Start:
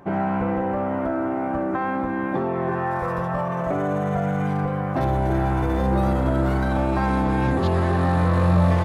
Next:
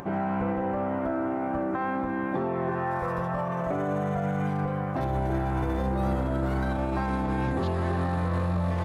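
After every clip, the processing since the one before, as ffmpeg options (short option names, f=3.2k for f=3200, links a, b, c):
-af "acompressor=mode=upward:threshold=-28dB:ratio=2.5,alimiter=limit=-15.5dB:level=0:latency=1:release=46,volume=-4dB"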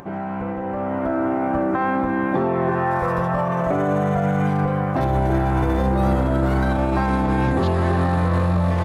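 -af "dynaudnorm=f=630:g=3:m=8dB"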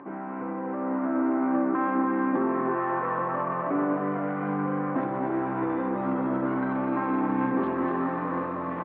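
-filter_complex "[0:a]asoftclip=type=tanh:threshold=-13dB,highpass=f=170:w=0.5412,highpass=f=170:w=1.3066,equalizer=f=170:t=q:w=4:g=-8,equalizer=f=280:t=q:w=4:g=9,equalizer=f=690:t=q:w=4:g=-5,equalizer=f=1.1k:t=q:w=4:g=6,lowpass=f=2.3k:w=0.5412,lowpass=f=2.3k:w=1.3066,asplit=2[a][b];[b]aecho=0:1:245:0.447[c];[a][c]amix=inputs=2:normalize=0,volume=-6.5dB"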